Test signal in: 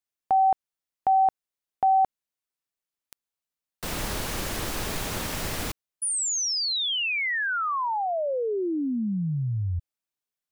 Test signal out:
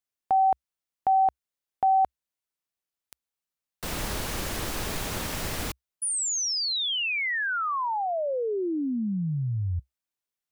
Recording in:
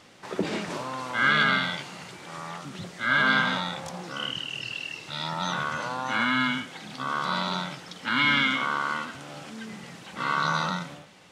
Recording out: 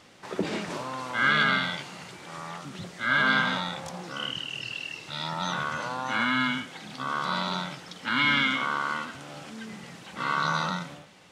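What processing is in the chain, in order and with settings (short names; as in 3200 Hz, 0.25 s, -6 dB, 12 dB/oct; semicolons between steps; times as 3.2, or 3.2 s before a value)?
bell 65 Hz +3 dB 0.43 oct; gain -1 dB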